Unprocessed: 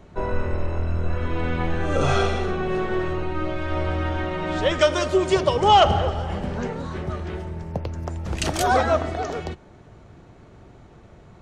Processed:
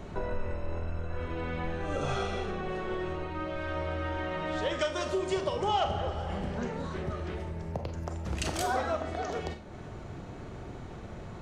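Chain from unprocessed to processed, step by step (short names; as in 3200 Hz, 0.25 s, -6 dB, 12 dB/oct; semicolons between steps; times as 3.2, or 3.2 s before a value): compressor 2.5:1, threshold -42 dBFS, peak gain reduction 20 dB; Schroeder reverb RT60 0.37 s, combs from 30 ms, DRR 7 dB; gain +5 dB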